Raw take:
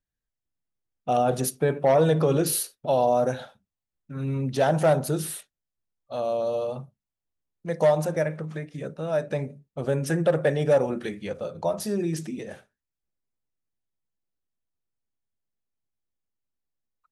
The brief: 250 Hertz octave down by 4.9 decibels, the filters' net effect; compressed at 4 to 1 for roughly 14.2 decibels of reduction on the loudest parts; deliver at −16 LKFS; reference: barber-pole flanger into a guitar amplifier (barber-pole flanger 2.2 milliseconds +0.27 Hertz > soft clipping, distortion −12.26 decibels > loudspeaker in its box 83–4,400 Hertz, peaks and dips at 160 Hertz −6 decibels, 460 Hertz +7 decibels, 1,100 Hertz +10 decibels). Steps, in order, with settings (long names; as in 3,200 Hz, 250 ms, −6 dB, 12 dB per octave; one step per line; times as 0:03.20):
parametric band 250 Hz −6 dB
downward compressor 4 to 1, threshold −34 dBFS
barber-pole flanger 2.2 ms +0.27 Hz
soft clipping −36.5 dBFS
loudspeaker in its box 83–4,400 Hz, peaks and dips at 160 Hz −6 dB, 460 Hz +7 dB, 1,100 Hz +10 dB
level +26 dB